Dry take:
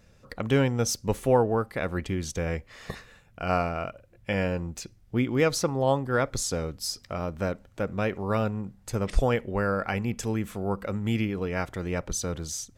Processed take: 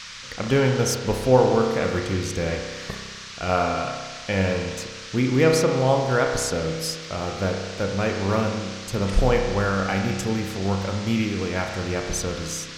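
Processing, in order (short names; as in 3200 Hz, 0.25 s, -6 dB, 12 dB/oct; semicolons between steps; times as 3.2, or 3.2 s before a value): spring tank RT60 1.5 s, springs 31 ms, chirp 80 ms, DRR 2 dB; band noise 1100–6100 Hz -42 dBFS; gain +2.5 dB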